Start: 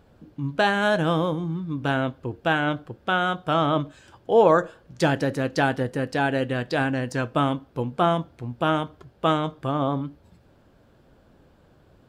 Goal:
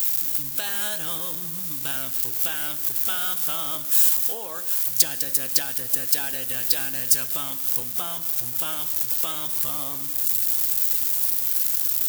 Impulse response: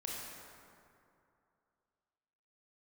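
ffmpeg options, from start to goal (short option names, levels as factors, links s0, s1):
-filter_complex "[0:a]aeval=exprs='val(0)+0.5*0.0251*sgn(val(0))':c=same,alimiter=limit=0.316:level=0:latency=1:release=449,acompressor=threshold=0.0447:ratio=2.5,aemphasis=mode=production:type=75fm,asplit=2[s0][s1];[1:a]atrim=start_sample=2205[s2];[s1][s2]afir=irnorm=-1:irlink=0,volume=0.211[s3];[s0][s3]amix=inputs=2:normalize=0,crystalizer=i=10:c=0,volume=0.188"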